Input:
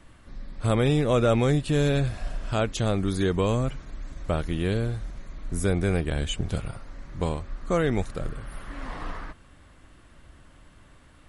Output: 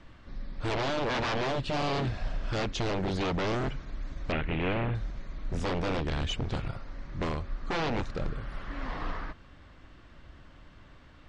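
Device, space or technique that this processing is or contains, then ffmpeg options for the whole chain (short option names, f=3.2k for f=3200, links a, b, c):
synthesiser wavefolder: -filter_complex "[0:a]aeval=exprs='0.0596*(abs(mod(val(0)/0.0596+3,4)-2)-1)':c=same,lowpass=f=5.6k:w=0.5412,lowpass=f=5.6k:w=1.3066,asettb=1/sr,asplit=3[a][b][c];[a]atrim=end=4.324[d];[b]atrim=start=4.32:end=4.95,asetpts=PTS-STARTPTS,afade=t=in:d=0.004:c=qsin,afade=t=out:st=0.626:d=0.004:c=qsin,highshelf=f=3.7k:t=q:w=3:g=-13.5[e];[c]atrim=start=4.946[f];[d][e]acrossfade=d=0.004:c1=hsin:c2=qsin[g];[g][f]acrossfade=d=0.004:c1=qsin:c2=hsin"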